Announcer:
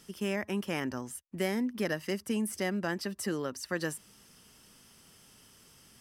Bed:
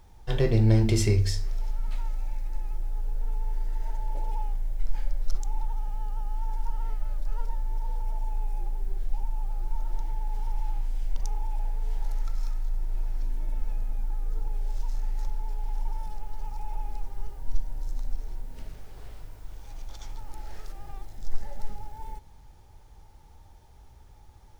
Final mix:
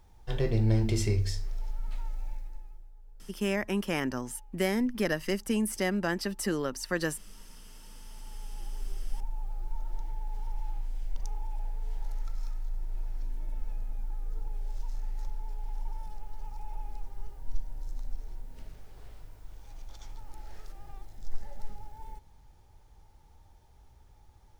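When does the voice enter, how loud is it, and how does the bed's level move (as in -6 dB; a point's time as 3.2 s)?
3.20 s, +3.0 dB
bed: 2.32 s -5 dB
2.95 s -22.5 dB
7.79 s -22.5 dB
8.81 s -5.5 dB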